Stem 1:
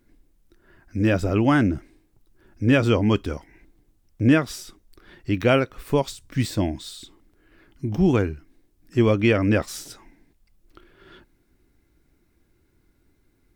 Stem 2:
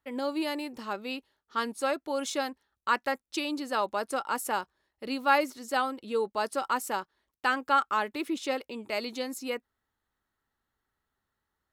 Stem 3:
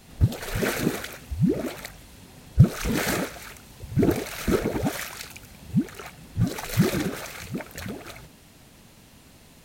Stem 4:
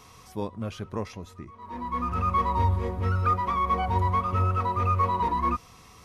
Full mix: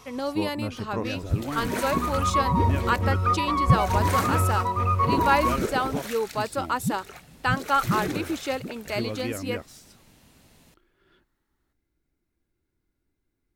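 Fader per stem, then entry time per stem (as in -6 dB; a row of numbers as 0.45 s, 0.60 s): -14.0 dB, +2.0 dB, -5.0 dB, +1.0 dB; 0.00 s, 0.00 s, 1.10 s, 0.00 s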